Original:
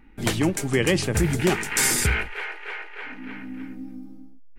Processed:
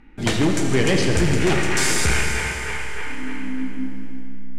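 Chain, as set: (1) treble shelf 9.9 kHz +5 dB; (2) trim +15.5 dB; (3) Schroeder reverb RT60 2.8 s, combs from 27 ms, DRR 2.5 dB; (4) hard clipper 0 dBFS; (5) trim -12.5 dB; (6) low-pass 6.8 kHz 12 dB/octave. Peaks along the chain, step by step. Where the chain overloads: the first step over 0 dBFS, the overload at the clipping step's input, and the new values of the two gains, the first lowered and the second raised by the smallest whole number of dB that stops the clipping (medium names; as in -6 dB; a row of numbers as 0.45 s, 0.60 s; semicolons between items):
-7.0 dBFS, +8.5 dBFS, +10.0 dBFS, 0.0 dBFS, -12.5 dBFS, -11.5 dBFS; step 2, 10.0 dB; step 2 +5.5 dB, step 5 -2.5 dB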